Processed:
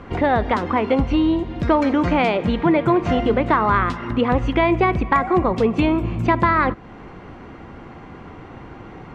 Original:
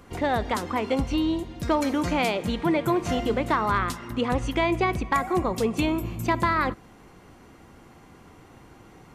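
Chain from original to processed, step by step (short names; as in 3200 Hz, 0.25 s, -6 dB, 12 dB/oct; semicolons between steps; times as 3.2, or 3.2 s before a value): in parallel at +2.5 dB: compressor, threshold -35 dBFS, peak gain reduction 16 dB; on the sum: LPF 2600 Hz 12 dB/oct; gain +4.5 dB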